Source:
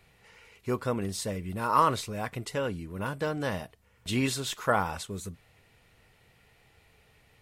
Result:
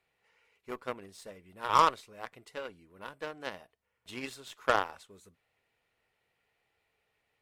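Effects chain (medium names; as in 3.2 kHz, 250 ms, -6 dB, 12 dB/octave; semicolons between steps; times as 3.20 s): tone controls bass -12 dB, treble -5 dB; Chebyshev shaper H 4 -23 dB, 7 -19 dB, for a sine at -10.5 dBFS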